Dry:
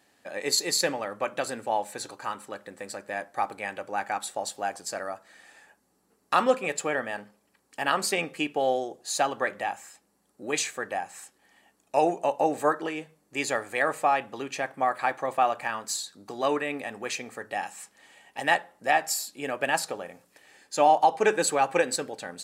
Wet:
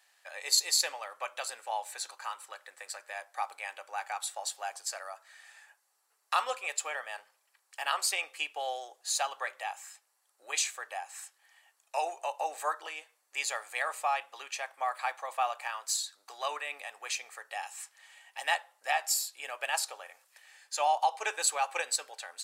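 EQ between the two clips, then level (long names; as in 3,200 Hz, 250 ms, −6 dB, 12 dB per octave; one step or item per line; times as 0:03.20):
Bessel high-pass filter 1,100 Hz, order 4
dynamic equaliser 1,700 Hz, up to −6 dB, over −46 dBFS, Q 1.7
0.0 dB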